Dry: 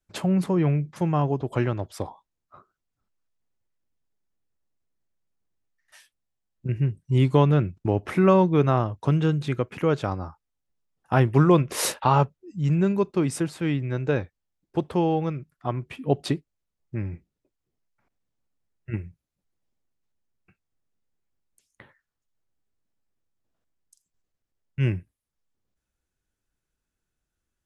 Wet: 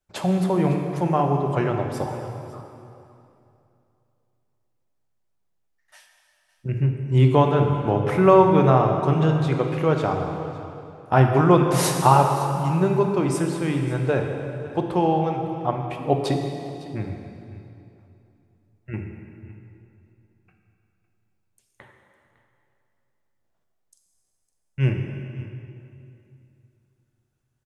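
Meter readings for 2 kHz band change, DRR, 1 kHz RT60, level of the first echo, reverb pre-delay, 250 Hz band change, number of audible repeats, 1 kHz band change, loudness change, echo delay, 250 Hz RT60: +3.0 dB, 3.0 dB, 2.6 s, −18.5 dB, 3 ms, +1.5 dB, 1, +6.5 dB, +3.0 dB, 556 ms, 3.0 s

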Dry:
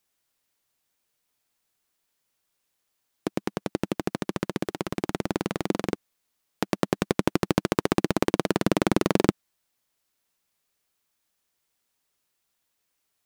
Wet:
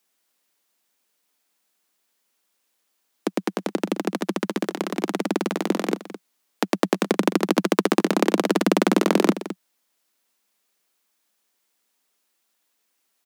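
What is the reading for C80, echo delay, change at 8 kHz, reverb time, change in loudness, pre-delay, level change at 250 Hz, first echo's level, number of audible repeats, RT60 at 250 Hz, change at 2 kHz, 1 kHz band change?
no reverb audible, 213 ms, +4.5 dB, no reverb audible, +4.0 dB, no reverb audible, +4.5 dB, −13.5 dB, 1, no reverb audible, +4.5 dB, +4.5 dB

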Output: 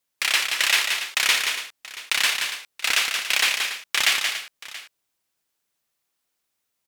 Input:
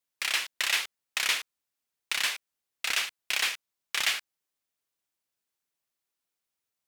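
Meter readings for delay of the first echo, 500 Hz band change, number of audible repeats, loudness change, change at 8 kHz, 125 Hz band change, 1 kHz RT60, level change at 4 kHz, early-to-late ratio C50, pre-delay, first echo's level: 177 ms, +8.5 dB, 3, +7.5 dB, +8.5 dB, can't be measured, no reverb audible, +8.5 dB, no reverb audible, no reverb audible, −5.5 dB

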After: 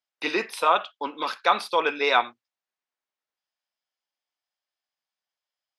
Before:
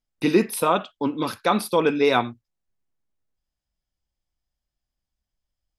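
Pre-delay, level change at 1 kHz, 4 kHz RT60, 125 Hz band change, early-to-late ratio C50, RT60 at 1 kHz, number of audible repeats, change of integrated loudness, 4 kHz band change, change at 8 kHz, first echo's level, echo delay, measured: no reverb audible, +1.5 dB, no reverb audible, below −20 dB, no reverb audible, no reverb audible, no echo audible, −2.0 dB, +2.0 dB, −9.5 dB, no echo audible, no echo audible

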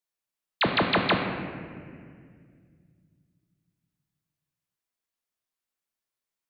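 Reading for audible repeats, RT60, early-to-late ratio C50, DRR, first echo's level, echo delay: no echo audible, 2.0 s, 4.5 dB, 2.0 dB, no echo audible, no echo audible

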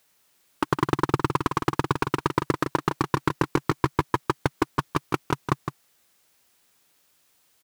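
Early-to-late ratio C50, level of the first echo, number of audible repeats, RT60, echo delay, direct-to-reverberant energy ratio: no reverb audible, −7.5 dB, 1, no reverb audible, 161 ms, no reverb audible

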